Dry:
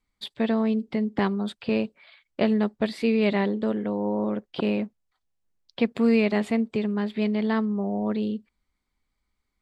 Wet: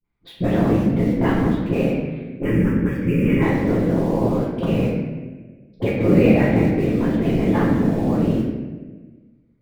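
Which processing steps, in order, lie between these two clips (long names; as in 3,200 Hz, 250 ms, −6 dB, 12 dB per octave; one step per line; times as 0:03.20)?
low-pass filter 2,500 Hz 12 dB per octave
in parallel at −9 dB: bit-depth reduction 6 bits, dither none
on the sum: all-pass dispersion highs, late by 44 ms, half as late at 490 Hz
random phases in short frames
0:02.42–0:03.42: phaser with its sweep stopped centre 1,700 Hz, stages 4
convolution reverb RT60 1.3 s, pre-delay 5 ms, DRR −7 dB
level −4.5 dB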